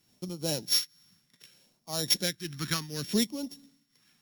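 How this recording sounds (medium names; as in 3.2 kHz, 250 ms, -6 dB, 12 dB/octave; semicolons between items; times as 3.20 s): a buzz of ramps at a fixed pitch in blocks of 8 samples; phasing stages 2, 0.66 Hz, lowest notch 550–1600 Hz; a quantiser's noise floor 12-bit, dither none; tremolo triangle 2 Hz, depth 80%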